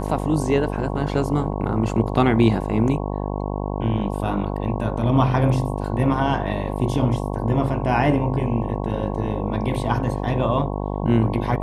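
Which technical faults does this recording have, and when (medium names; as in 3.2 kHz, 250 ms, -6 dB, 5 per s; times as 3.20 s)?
buzz 50 Hz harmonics 22 -26 dBFS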